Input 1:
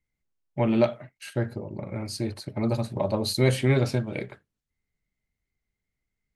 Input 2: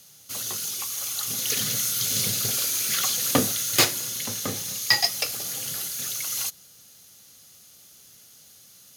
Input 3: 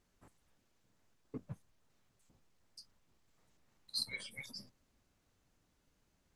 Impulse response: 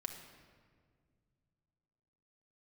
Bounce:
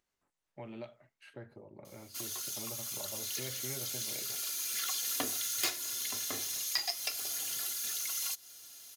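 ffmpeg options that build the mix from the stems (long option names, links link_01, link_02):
-filter_complex "[0:a]bass=frequency=250:gain=-10,treble=frequency=4000:gain=-13,acrossover=split=130|3000[link_01][link_02][link_03];[link_02]acompressor=threshold=-36dB:ratio=2.5[link_04];[link_01][link_04][link_03]amix=inputs=3:normalize=0,volume=-12dB,asplit=2[link_05][link_06];[1:a]aecho=1:1:2.9:0.63,adelay=1850,volume=-1.5dB[link_07];[2:a]flanger=delay=18.5:depth=5.1:speed=1.3,acompressor=mode=upward:threshold=-55dB:ratio=2.5,volume=-15.5dB[link_08];[link_06]apad=whole_len=477023[link_09];[link_07][link_09]sidechaincompress=threshold=-54dB:ratio=3:attack=8.3:release=994[link_10];[link_10][link_08]amix=inputs=2:normalize=0,lowshelf=frequency=330:gain=-12,acompressor=threshold=-36dB:ratio=2.5,volume=0dB[link_11];[link_05][link_11]amix=inputs=2:normalize=0"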